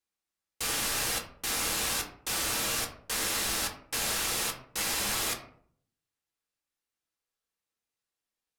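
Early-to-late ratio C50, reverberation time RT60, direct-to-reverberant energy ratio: 9.0 dB, 0.60 s, 0.5 dB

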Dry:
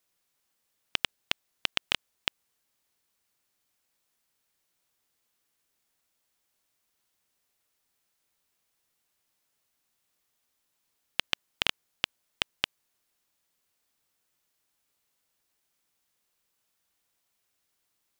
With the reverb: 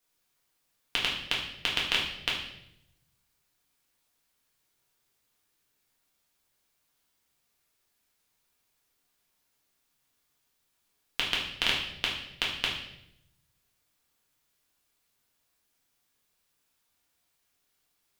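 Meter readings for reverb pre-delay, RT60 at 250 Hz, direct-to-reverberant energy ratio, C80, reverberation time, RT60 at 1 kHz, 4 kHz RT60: 4 ms, 1.0 s, −4.0 dB, 8.0 dB, 0.80 s, 0.65 s, 0.70 s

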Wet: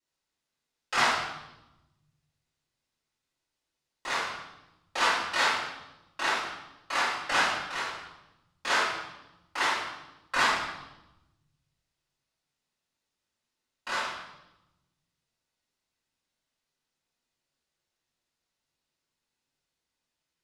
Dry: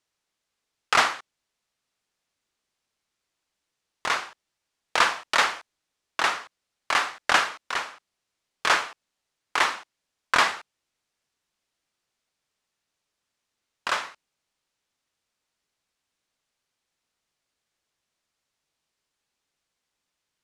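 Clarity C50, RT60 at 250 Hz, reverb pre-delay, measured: 0.5 dB, 1.5 s, 3 ms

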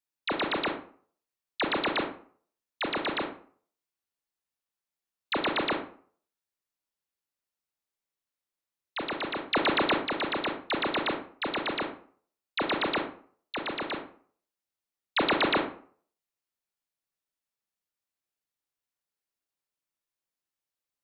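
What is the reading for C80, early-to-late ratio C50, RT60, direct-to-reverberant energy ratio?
12.5 dB, 8.0 dB, 0.50 s, 3.5 dB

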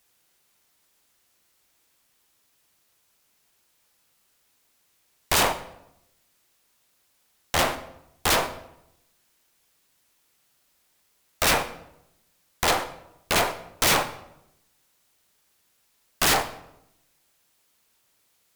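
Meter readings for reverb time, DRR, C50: 0.80 s, 10.0 dB, 12.5 dB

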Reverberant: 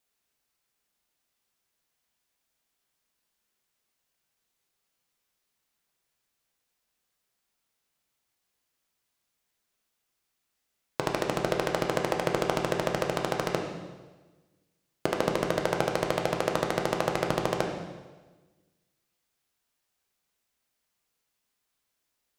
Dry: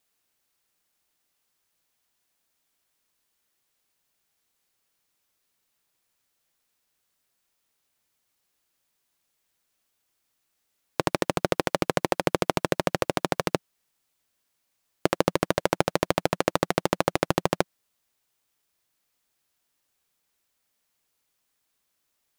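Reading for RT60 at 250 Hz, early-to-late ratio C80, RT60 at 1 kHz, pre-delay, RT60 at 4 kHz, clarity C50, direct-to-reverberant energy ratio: 1.4 s, 6.5 dB, 1.2 s, 7 ms, 1.2 s, 4.5 dB, 1.0 dB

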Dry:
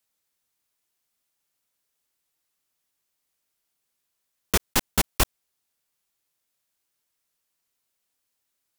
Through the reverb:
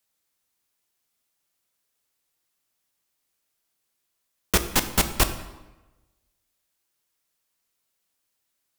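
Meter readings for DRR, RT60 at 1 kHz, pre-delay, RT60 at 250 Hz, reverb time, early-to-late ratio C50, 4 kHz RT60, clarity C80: 8.5 dB, 1.1 s, 11 ms, 1.1 s, 1.1 s, 11.0 dB, 0.80 s, 13.0 dB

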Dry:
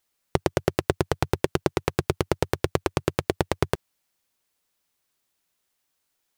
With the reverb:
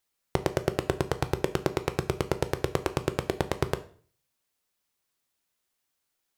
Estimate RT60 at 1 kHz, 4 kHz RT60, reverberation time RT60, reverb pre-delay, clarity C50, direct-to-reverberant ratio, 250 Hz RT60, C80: 0.45 s, 0.40 s, 0.45 s, 11 ms, 16.0 dB, 10.0 dB, 0.50 s, 20.0 dB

